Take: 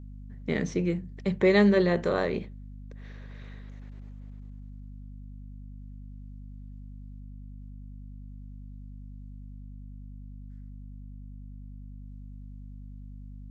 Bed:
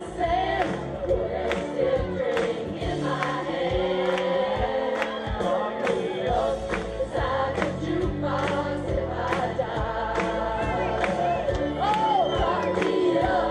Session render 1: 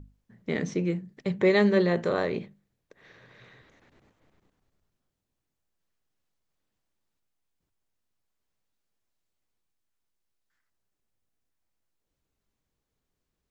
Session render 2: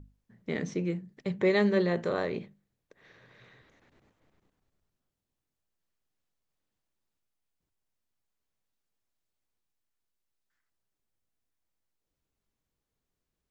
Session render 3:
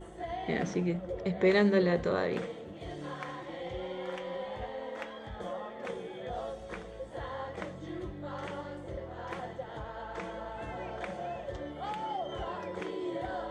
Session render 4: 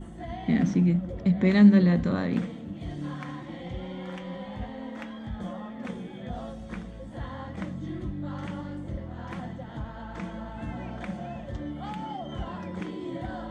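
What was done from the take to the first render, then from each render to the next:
mains-hum notches 50/100/150/200/250 Hz
level −3.5 dB
mix in bed −14 dB
low shelf with overshoot 320 Hz +8 dB, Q 3

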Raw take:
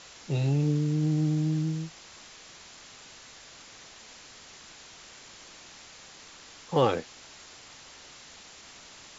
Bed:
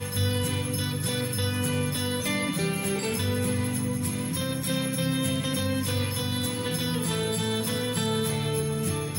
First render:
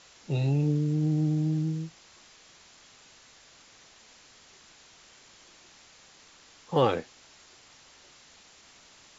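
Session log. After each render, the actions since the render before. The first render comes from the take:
noise reduction from a noise print 6 dB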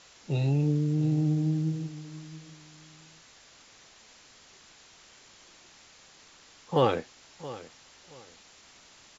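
repeating echo 674 ms, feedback 25%, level −16.5 dB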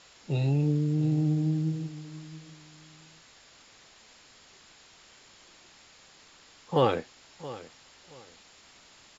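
notch filter 6,000 Hz, Q 10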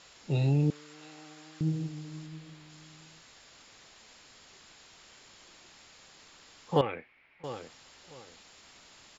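0:00.70–0:01.61: high-pass with resonance 1,200 Hz, resonance Q 1.6
0:02.26–0:02.70: parametric band 6,100 Hz −6 dB
0:06.81–0:07.44: transistor ladder low-pass 2,400 Hz, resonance 75%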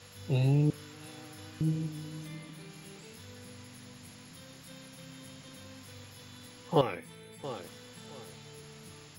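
mix in bed −23.5 dB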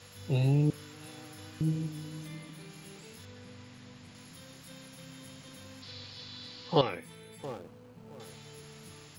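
0:03.25–0:04.15: high-frequency loss of the air 79 metres
0:05.82–0:06.89: low-pass with resonance 4,400 Hz, resonance Q 4.6
0:07.45–0:08.20: running median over 25 samples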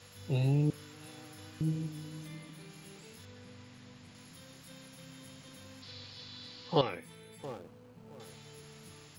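level −2.5 dB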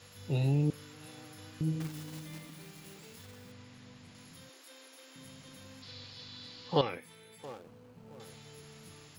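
0:01.80–0:03.52: one scale factor per block 3 bits
0:04.49–0:05.16: Butterworth high-pass 280 Hz 72 dB per octave
0:06.98–0:07.67: low-shelf EQ 350 Hz −7.5 dB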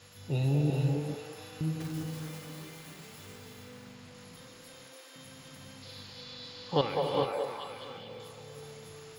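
echo through a band-pass that steps 207 ms, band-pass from 630 Hz, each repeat 0.7 octaves, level −0.5 dB
reverb whose tail is shaped and stops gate 460 ms rising, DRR 1.5 dB

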